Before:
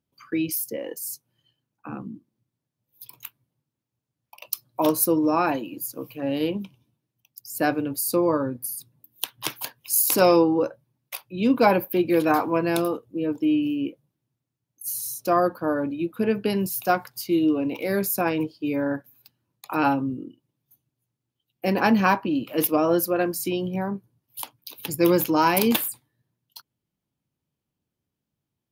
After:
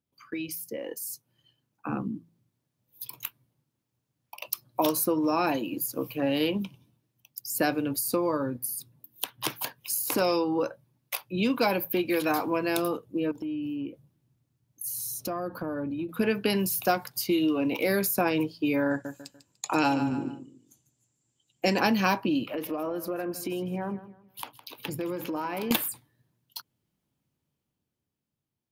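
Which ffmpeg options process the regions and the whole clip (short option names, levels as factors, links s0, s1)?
-filter_complex "[0:a]asettb=1/sr,asplit=3[s0][s1][s2];[s0]atrim=end=13.314[s3];[s1]atrim=start=13.31:end=16.09,asetpts=PTS-STARTPTS,afade=t=in:d=0.004:c=qsin,afade=t=out:st=2.776:d=0.004:c=qsin,lowshelf=f=170:g=11,acompressor=threshold=0.0178:ratio=5:attack=3.2:release=140:knee=1:detection=peak[s4];[s2]atrim=start=16.086[s5];[s3][s4]acrossfade=d=0.004:c1=hsin:c2=qsin[s6];[s6][s5]acrossfade=d=0.004:c1=qsin:c2=hsin,asettb=1/sr,asplit=3[s7][s8][s9];[s7]atrim=end=18.904[s10];[s8]atrim=start=18.9:end=21.79,asetpts=PTS-STARTPTS,afade=t=in:d=0.004:c=qsin,afade=t=out:st=2.886:d=0.004:c=qsin,lowpass=f=7400:t=q:w=14,equalizer=f=1200:w=5.1:g=-3,aecho=1:1:147|294|441:0.224|0.0694|0.0215,atrim=end_sample=127449[s11];[s9]atrim=start=21.786[s12];[s10][s11]acrossfade=d=0.004:c1=hsin:c2=qsin[s13];[s13][s12]acrossfade=d=0.004:c1=qsin:c2=hsin,asettb=1/sr,asplit=3[s14][s15][s16];[s14]atrim=end=22.464[s17];[s15]atrim=start=22.46:end=25.71,asetpts=PTS-STARTPTS,afade=t=in:d=0.004:c=qsin,afade=t=out:st=3.246:d=0.004:c=qsin,bass=f=250:g=-3,treble=f=4000:g=-13,acompressor=threshold=0.0224:ratio=8:attack=3.2:release=140:knee=1:detection=peak,aecho=1:1:160|320|480:0.178|0.0516|0.015,atrim=end_sample=143325[s18];[s16]atrim=start=25.706[s19];[s17][s18]acrossfade=d=0.004:c1=hsin:c2=qsin[s20];[s20][s19]acrossfade=d=0.004:c1=qsin:c2=hsin,acrossover=split=880|2600[s21][s22][s23];[s21]acompressor=threshold=0.0355:ratio=4[s24];[s22]acompressor=threshold=0.0141:ratio=4[s25];[s23]acompressor=threshold=0.0251:ratio=4[s26];[s24][s25][s26]amix=inputs=3:normalize=0,bandreject=f=55.87:t=h:w=4,bandreject=f=111.74:t=h:w=4,bandreject=f=167.61:t=h:w=4,dynaudnorm=f=160:g=17:m=2.66,volume=0.631"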